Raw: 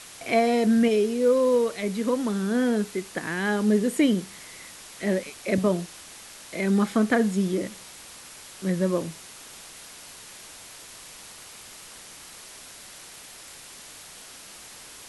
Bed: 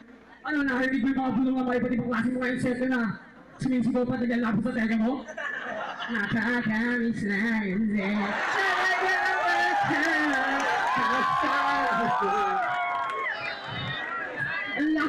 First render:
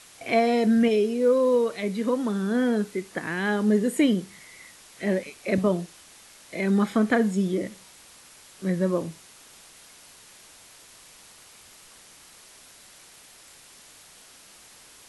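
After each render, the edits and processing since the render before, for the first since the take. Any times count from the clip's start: noise print and reduce 6 dB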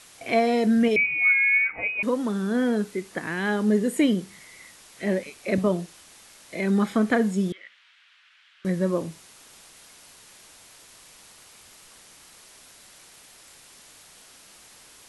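0.96–2.03 inverted band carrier 2700 Hz; 7.52–8.65 Chebyshev band-pass 1500–3200 Hz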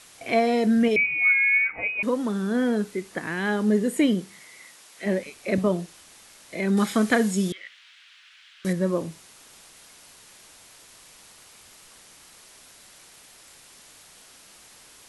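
4.21–5.05 HPF 140 Hz -> 510 Hz 6 dB/oct; 6.77–8.73 high shelf 2700 Hz +11 dB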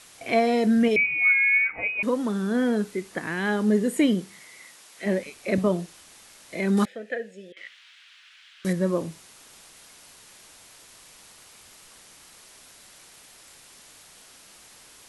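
6.85–7.57 vowel filter e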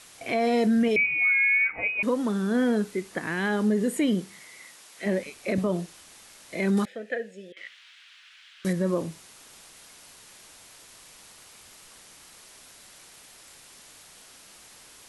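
limiter -16 dBFS, peak gain reduction 6.5 dB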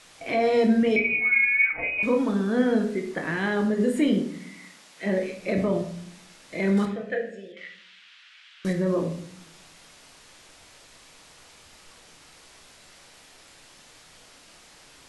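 air absorption 51 m; shoebox room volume 120 m³, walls mixed, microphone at 0.59 m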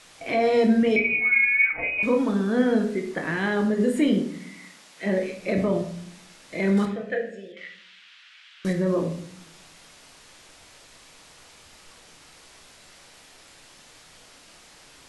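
gain +1 dB

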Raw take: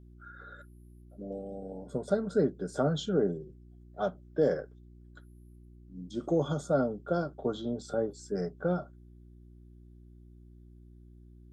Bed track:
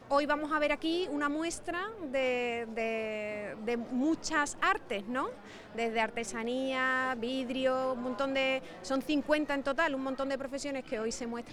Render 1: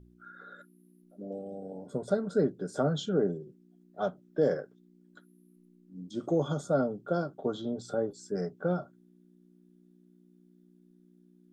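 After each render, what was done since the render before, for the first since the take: de-hum 60 Hz, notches 2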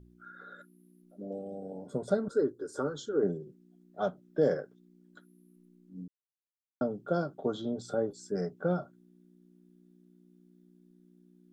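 2.28–3.23 fixed phaser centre 680 Hz, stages 6; 6.08–6.81 mute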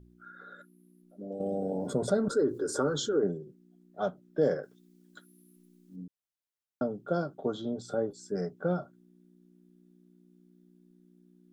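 1.4–3.19 fast leveller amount 50%; 4.63–5.96 high shelf 2200 Hz +11.5 dB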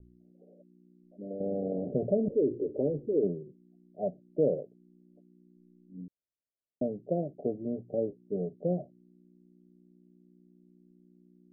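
steep low-pass 700 Hz 72 dB/oct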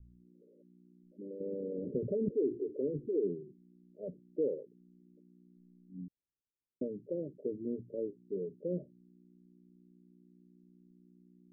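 formant sharpening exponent 2; running mean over 59 samples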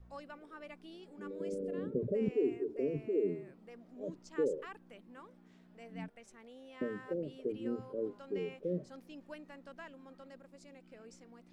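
add bed track -20.5 dB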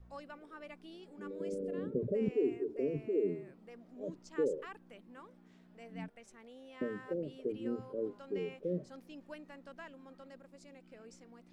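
nothing audible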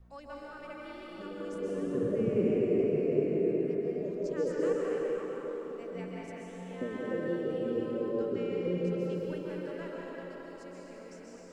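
band-limited delay 0.419 s, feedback 63%, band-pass 500 Hz, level -10 dB; plate-style reverb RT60 4.1 s, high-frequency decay 0.7×, pre-delay 0.115 s, DRR -5 dB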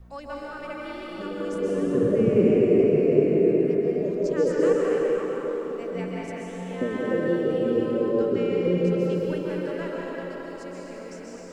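gain +9 dB

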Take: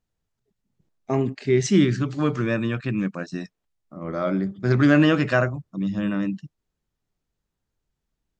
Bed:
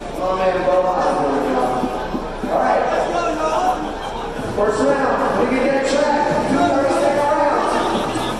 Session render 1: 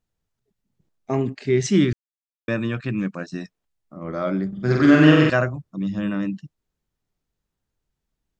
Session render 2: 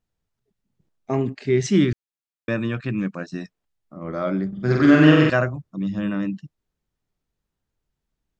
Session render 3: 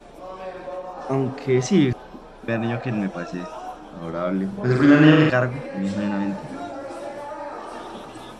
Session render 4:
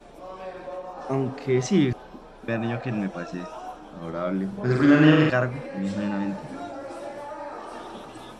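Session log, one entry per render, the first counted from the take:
1.93–2.48 mute; 4.48–5.3 flutter echo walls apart 7.8 m, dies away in 1.1 s
high shelf 6900 Hz -5 dB
add bed -17 dB
gain -3 dB

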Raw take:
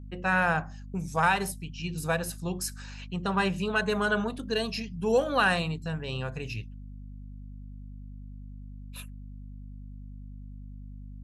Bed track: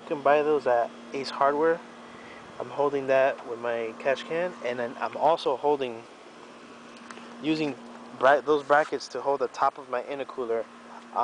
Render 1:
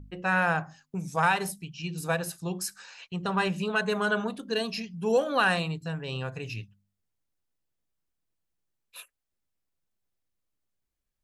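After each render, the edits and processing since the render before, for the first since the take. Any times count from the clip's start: de-hum 50 Hz, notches 5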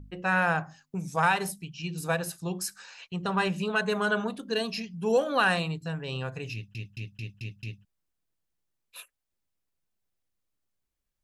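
6.53 stutter in place 0.22 s, 6 plays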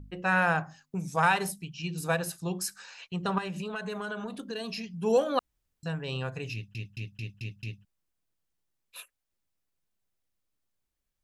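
3.38–4.88 compressor, threshold -32 dBFS; 5.39–5.83 room tone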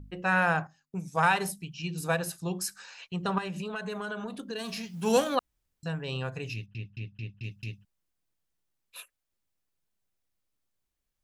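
0.67–1.18 upward expander, over -50 dBFS; 4.58–5.34 spectral whitening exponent 0.6; 6.66–7.44 air absorption 200 m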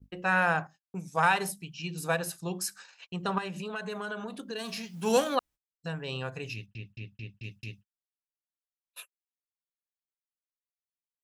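gate -46 dBFS, range -35 dB; low shelf 140 Hz -7 dB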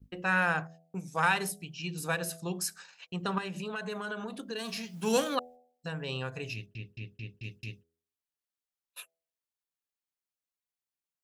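de-hum 82.35 Hz, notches 10; dynamic EQ 730 Hz, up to -5 dB, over -39 dBFS, Q 1.2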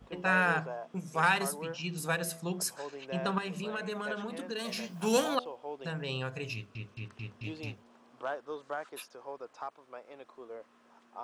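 add bed track -17 dB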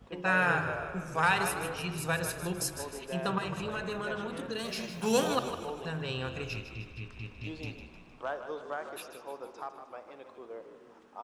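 on a send: frequency-shifting echo 0.154 s, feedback 53%, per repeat -45 Hz, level -10 dB; on the sum: spring tank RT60 2 s, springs 50 ms, chirp 65 ms, DRR 11 dB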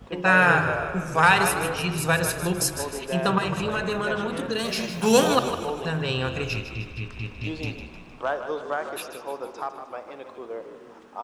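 gain +9 dB

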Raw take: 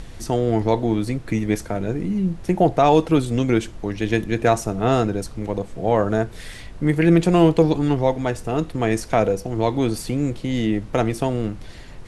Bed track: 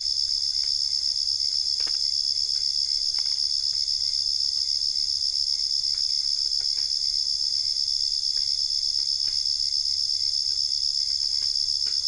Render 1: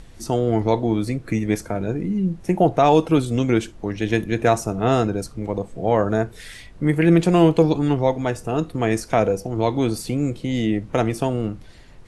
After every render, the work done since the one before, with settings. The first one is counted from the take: noise print and reduce 7 dB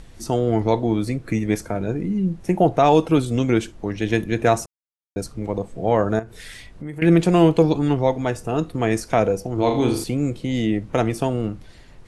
4.66–5.16 mute; 6.19–7.02 compressor 3:1, threshold -32 dBFS; 9.54–10.04 flutter echo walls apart 6.7 m, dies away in 0.5 s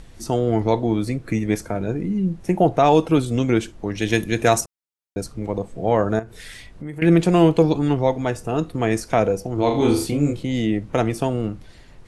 3.95–4.61 high shelf 3200 Hz +10.5 dB; 9.78–10.43 doubler 27 ms -2.5 dB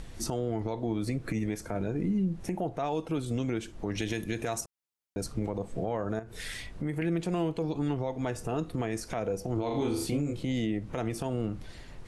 compressor 10:1, threshold -25 dBFS, peak gain reduction 15.5 dB; limiter -21 dBFS, peak gain reduction 10 dB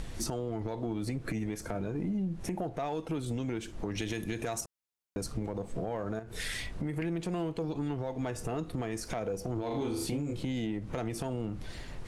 compressor 3:1, threshold -35 dBFS, peak gain reduction 8 dB; sample leveller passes 1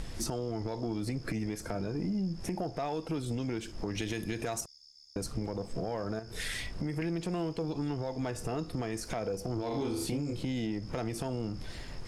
add bed track -32.5 dB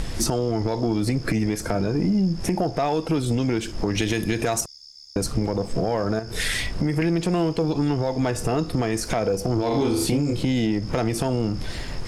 gain +11.5 dB

